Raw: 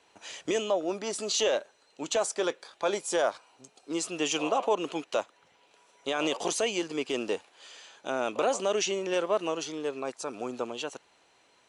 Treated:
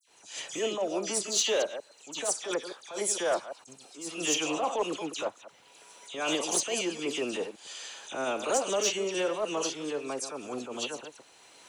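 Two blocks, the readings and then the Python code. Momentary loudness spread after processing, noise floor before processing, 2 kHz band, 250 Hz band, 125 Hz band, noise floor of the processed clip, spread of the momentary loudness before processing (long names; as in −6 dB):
14 LU, −65 dBFS, −0.5 dB, −1.5 dB, −1.5 dB, −58 dBFS, 12 LU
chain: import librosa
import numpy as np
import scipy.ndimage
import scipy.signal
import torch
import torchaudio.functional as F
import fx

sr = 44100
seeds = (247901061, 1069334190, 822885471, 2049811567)

p1 = fx.reverse_delay(x, sr, ms=115, wet_db=-10.5)
p2 = fx.recorder_agc(p1, sr, target_db=-22.5, rise_db_per_s=11.0, max_gain_db=30)
p3 = scipy.signal.sosfilt(scipy.signal.butter(2, 70.0, 'highpass', fs=sr, output='sos'), p2)
p4 = fx.high_shelf(p3, sr, hz=5600.0, db=11.5)
p5 = fx.dispersion(p4, sr, late='lows', ms=80.0, hz=2800.0)
p6 = np.clip(p5, -10.0 ** (-22.0 / 20.0), 10.0 ** (-22.0 / 20.0))
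p7 = p5 + (p6 * 10.0 ** (-6.5 / 20.0))
p8 = fx.attack_slew(p7, sr, db_per_s=120.0)
y = p8 * 10.0 ** (-4.5 / 20.0)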